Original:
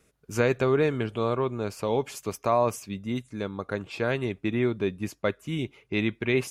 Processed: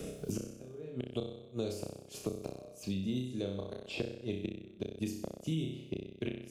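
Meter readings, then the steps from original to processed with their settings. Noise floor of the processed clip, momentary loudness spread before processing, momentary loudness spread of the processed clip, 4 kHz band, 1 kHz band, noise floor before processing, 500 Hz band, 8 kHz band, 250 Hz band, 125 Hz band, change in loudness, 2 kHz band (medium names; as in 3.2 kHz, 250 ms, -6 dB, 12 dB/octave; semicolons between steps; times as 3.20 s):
-54 dBFS, 10 LU, 7 LU, -7.0 dB, -24.0 dB, -66 dBFS, -14.0 dB, -7.5 dB, -8.5 dB, -9.0 dB, -11.5 dB, -18.5 dB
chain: inverted gate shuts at -18 dBFS, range -35 dB; high-order bell 1.4 kHz -13.5 dB; flutter echo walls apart 5.4 m, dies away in 0.58 s; three bands compressed up and down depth 100%; trim -5 dB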